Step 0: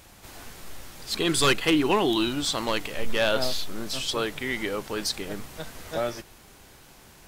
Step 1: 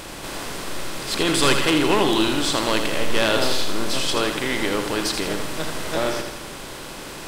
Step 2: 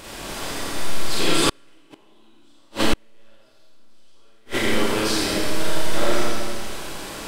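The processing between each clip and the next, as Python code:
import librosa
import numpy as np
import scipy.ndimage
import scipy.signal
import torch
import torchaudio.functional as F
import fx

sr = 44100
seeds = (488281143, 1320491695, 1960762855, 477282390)

y1 = fx.bin_compress(x, sr, power=0.6)
y1 = fx.echo_feedback(y1, sr, ms=81, feedback_pct=52, wet_db=-7)
y2 = fx.rev_schroeder(y1, sr, rt60_s=1.4, comb_ms=28, drr_db=-6.5)
y2 = fx.gate_flip(y2, sr, shuts_db=0.0, range_db=-39)
y2 = F.gain(torch.from_numpy(y2), -5.5).numpy()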